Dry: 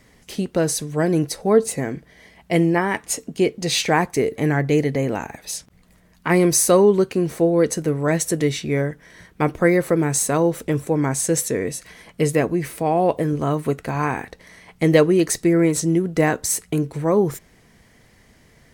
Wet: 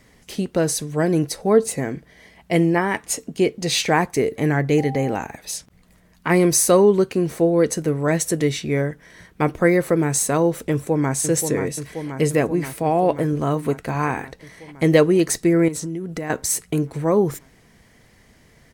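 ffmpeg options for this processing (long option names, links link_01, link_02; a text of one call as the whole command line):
ffmpeg -i in.wav -filter_complex "[0:a]asettb=1/sr,asplit=3[link_01][link_02][link_03];[link_01]atrim=end=4.784[link_04];[link_02]atrim=start=4.78:end=5.22,asetpts=PTS-STARTPTS,afade=type=in:duration=0.004:curve=qsin,afade=type=out:start_time=0.436:duration=0.004:curve=qsin,aeval=exprs='val(0)+0.0282*sin(2*PI*790*n/s)':channel_layout=same[link_05];[link_03]atrim=start=5.216[link_06];[link_04][link_05]acrossfade=duration=0.004:curve1=hsin:curve2=qsin[link_07];[link_07][link_06]acrossfade=duration=0.004:curve1=qsin:curve2=hsin,asplit=2[link_08][link_09];[link_09]afade=type=in:start_time=10.71:duration=0.01,afade=type=out:start_time=11.14:duration=0.01,aecho=0:1:530|1060|1590|2120|2650|3180|3710|4240|4770|5300|5830|6360:0.446684|0.335013|0.25126|0.188445|0.141333|0.106|0.0795001|0.0596251|0.0447188|0.0335391|0.0251543|0.0188657[link_10];[link_08][link_10]amix=inputs=2:normalize=0,asettb=1/sr,asplit=3[link_11][link_12][link_13];[link_11]atrim=end=15.684[link_14];[link_12]atrim=start=15.68:end=16.3,asetpts=PTS-STARTPTS,afade=type=in:duration=0.004:curve=qsin,afade=type=out:start_time=0.616:duration=0.004:curve=qsin,acompressor=threshold=-25dB:ratio=6:attack=3.2:release=140:knee=1:detection=peak[link_15];[link_13]atrim=start=16.296[link_16];[link_14][link_15]acrossfade=duration=0.004:curve1=hsin:curve2=qsin[link_17];[link_17][link_16]acrossfade=duration=0.004:curve1=qsin:curve2=hsin" out.wav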